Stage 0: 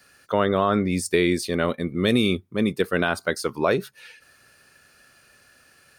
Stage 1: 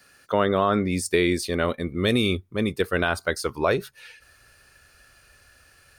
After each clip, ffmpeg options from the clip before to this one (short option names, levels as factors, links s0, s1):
-af "asubboost=boost=9:cutoff=65"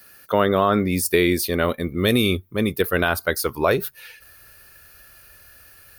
-af "aexciter=amount=8.9:drive=2.4:freq=11000,volume=1.41"